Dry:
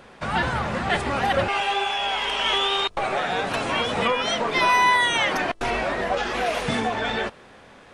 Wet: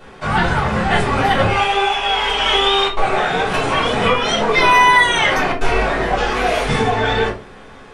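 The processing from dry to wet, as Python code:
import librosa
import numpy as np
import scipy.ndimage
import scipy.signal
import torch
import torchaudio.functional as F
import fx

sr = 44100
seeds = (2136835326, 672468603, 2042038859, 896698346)

y = fx.room_shoebox(x, sr, seeds[0], volume_m3=120.0, walls='furnished', distance_m=3.4)
y = F.gain(torch.from_numpy(y), -1.0).numpy()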